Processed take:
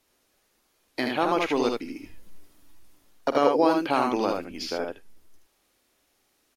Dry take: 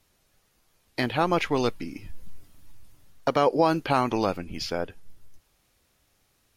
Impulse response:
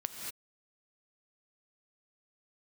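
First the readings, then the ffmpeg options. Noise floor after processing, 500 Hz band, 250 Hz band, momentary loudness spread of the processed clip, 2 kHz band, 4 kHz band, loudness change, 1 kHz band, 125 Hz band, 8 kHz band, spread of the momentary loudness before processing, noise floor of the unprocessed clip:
-70 dBFS, +1.0 dB, +1.0 dB, 14 LU, -0.5 dB, -0.5 dB, +0.5 dB, 0.0 dB, -10.5 dB, -0.5 dB, 15 LU, -69 dBFS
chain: -filter_complex "[0:a]lowshelf=f=200:t=q:w=1.5:g=-9,asplit=2[a][b];[b]aecho=0:1:49|77:0.237|0.631[c];[a][c]amix=inputs=2:normalize=0,volume=-2dB"

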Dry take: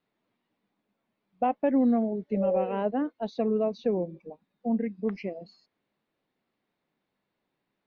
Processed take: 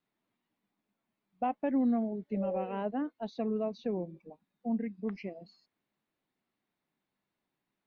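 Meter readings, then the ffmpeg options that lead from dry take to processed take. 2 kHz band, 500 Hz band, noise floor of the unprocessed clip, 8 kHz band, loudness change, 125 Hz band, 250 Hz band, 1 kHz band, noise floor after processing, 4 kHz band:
-4.5 dB, -8.0 dB, -83 dBFS, n/a, -6.0 dB, -4.5 dB, -5.0 dB, -5.5 dB, under -85 dBFS, -4.5 dB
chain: -af "equalizer=f=500:w=2.4:g=-5,volume=-4.5dB"

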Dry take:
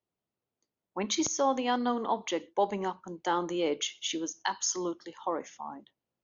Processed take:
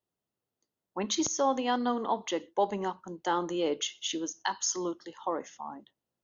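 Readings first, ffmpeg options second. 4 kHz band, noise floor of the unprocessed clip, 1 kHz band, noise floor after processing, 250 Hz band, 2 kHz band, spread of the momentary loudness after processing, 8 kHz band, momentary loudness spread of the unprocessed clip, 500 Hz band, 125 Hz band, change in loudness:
0.0 dB, under -85 dBFS, 0.0 dB, under -85 dBFS, 0.0 dB, -1.0 dB, 10 LU, n/a, 10 LU, 0.0 dB, 0.0 dB, 0.0 dB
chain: -af "bandreject=f=2.3k:w=8"

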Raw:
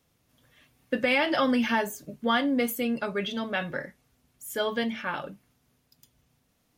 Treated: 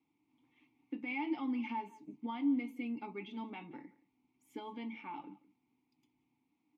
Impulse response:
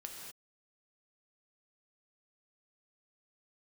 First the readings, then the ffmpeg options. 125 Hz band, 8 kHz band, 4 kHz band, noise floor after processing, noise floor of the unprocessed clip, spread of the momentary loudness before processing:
under -15 dB, under -30 dB, -22.5 dB, -81 dBFS, -71 dBFS, 13 LU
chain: -filter_complex "[0:a]alimiter=limit=-22.5dB:level=0:latency=1:release=458,asplit=3[a][b][c];[a]bandpass=f=300:t=q:w=8,volume=0dB[d];[b]bandpass=f=870:t=q:w=8,volume=-6dB[e];[c]bandpass=f=2.24k:t=q:w=8,volume=-9dB[f];[d][e][f]amix=inputs=3:normalize=0,aecho=1:1:174:0.0944,volume=4.5dB"

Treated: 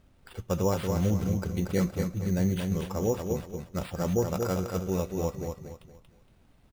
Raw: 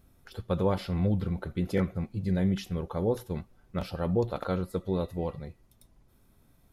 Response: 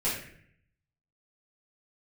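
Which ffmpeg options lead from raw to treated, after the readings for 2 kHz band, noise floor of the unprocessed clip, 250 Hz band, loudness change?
+1.0 dB, -63 dBFS, +1.0 dB, +1.0 dB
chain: -af "acrusher=samples=7:mix=1:aa=0.000001,aecho=1:1:233|466|699|932:0.562|0.174|0.054|0.0168"

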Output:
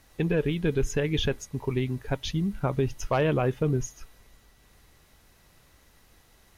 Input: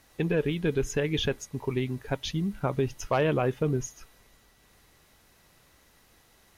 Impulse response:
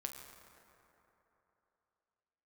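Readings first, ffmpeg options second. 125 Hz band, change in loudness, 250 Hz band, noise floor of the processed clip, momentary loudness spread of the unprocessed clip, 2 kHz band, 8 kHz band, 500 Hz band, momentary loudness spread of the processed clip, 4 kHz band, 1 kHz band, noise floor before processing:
+2.5 dB, +1.0 dB, +1.5 dB, -60 dBFS, 6 LU, 0.0 dB, 0.0 dB, +0.5 dB, 6 LU, 0.0 dB, 0.0 dB, -62 dBFS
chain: -af "lowshelf=f=97:g=8"

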